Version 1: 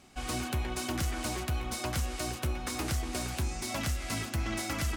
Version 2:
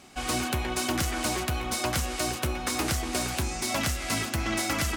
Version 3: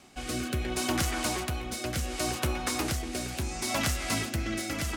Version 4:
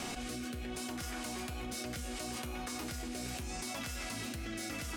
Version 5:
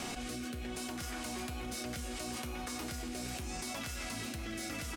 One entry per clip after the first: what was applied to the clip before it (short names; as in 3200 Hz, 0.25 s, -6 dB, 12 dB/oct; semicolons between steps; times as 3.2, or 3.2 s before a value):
low shelf 140 Hz -8 dB; gain +7 dB
rotary speaker horn 0.7 Hz
resonator 240 Hz, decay 0.48 s, harmonics all, mix 80%; fast leveller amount 100%; gain -3 dB
echo 0.646 s -15.5 dB